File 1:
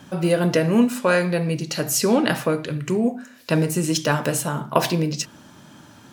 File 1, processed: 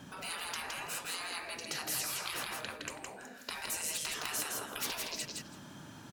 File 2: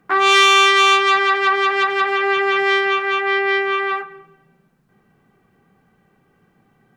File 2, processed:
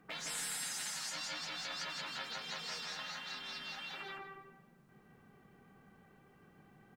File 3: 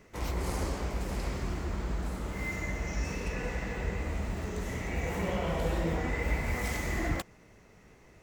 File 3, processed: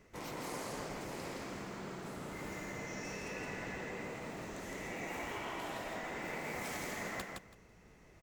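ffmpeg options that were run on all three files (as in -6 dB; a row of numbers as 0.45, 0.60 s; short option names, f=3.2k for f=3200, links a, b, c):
-af "afftfilt=real='re*lt(hypot(re,im),0.0891)':imag='im*lt(hypot(re,im),0.0891)':win_size=1024:overlap=0.75,aecho=1:1:165|330|495:0.668|0.107|0.0171,volume=-5.5dB"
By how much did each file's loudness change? -16.0, -25.5, -8.5 LU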